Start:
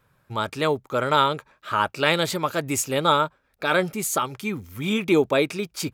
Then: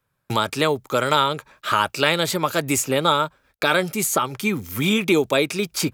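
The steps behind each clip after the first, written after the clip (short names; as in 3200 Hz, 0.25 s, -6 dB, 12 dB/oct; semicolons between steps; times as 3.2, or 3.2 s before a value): gate -55 dBFS, range -33 dB; high shelf 4000 Hz +6 dB; three-band squash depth 70%; gain +1 dB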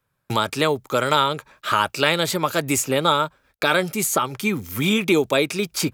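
nothing audible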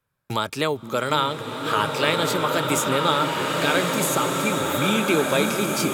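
delay with a stepping band-pass 0.524 s, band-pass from 220 Hz, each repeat 0.7 oct, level -3.5 dB; bloom reverb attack 1.72 s, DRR 0.5 dB; gain -3.5 dB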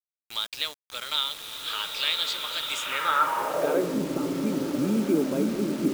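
band-pass sweep 3700 Hz -> 270 Hz, 2.71–3.99; bit-crush 7-bit; gain +3 dB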